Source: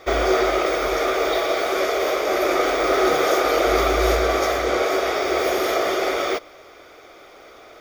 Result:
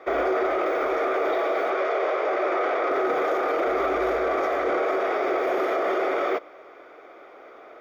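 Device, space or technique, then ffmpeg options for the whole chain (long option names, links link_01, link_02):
DJ mixer with the lows and highs turned down: -filter_complex "[0:a]asettb=1/sr,asplit=3[link_01][link_02][link_03];[link_01]atrim=end=1.704[link_04];[link_02]atrim=start=1.7:end=2.91,asetpts=PTS-STARTPTS,afade=type=in:duration=0.004:curve=qsin,afade=type=out:start_time=1.206:duration=0.004:curve=qsin,acrossover=split=330 6900:gain=0.2 1 0.141[link_05][link_06][link_07];[link_05][link_06][link_07]amix=inputs=3:normalize=0[link_08];[link_03]atrim=start=2.906[link_09];[link_04][link_08]acrossfade=duration=0.004:curve1=hsin:curve2=qsin[link_10];[link_10][link_09]acrossfade=duration=0.004:curve1=qsin:curve2=hsin,acrossover=split=210 2300:gain=0.112 1 0.1[link_11][link_12][link_13];[link_11][link_12][link_13]amix=inputs=3:normalize=0,alimiter=limit=-16.5dB:level=0:latency=1:release=12"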